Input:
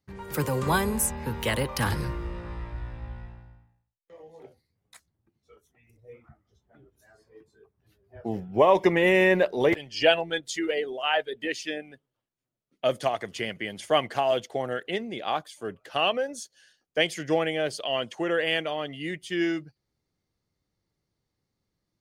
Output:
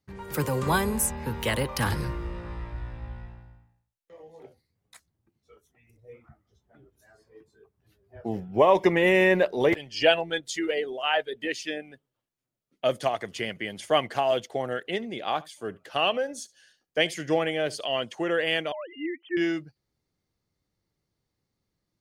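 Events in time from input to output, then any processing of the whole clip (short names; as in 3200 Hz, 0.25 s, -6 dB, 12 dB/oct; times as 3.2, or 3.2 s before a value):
14.95–17.93 echo 72 ms -22 dB
18.72–19.37 sine-wave speech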